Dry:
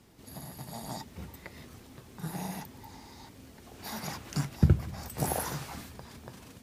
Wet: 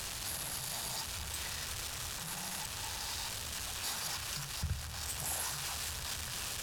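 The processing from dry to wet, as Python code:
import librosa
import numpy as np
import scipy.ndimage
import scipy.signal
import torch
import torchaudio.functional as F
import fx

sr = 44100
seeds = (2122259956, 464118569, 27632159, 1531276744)

p1 = x + 0.5 * 10.0 ** (-25.5 / 20.0) * np.sign(x)
p2 = fx.notch(p1, sr, hz=2100.0, q=6.5)
p3 = fx.rider(p2, sr, range_db=10, speed_s=0.5)
p4 = p2 + (p3 * 10.0 ** (-2.5 / 20.0))
p5 = fx.tone_stack(p4, sr, knobs='10-0-10')
p6 = p5 + fx.echo_thinned(p5, sr, ms=214, feedback_pct=77, hz=420.0, wet_db=-13.5, dry=0)
p7 = np.interp(np.arange(len(p6)), np.arange(len(p6))[::2], p6[::2])
y = p7 * 10.0 ** (-8.5 / 20.0)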